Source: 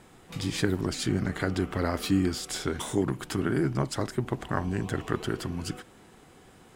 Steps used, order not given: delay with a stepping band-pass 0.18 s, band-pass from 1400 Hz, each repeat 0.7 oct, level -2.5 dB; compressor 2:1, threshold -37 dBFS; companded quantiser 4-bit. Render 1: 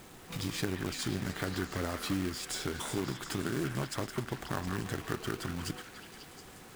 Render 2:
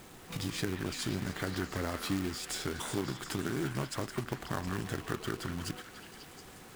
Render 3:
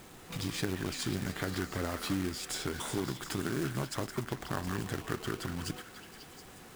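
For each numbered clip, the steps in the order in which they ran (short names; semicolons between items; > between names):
compressor > companded quantiser > delay with a stepping band-pass; companded quantiser > compressor > delay with a stepping band-pass; compressor > delay with a stepping band-pass > companded quantiser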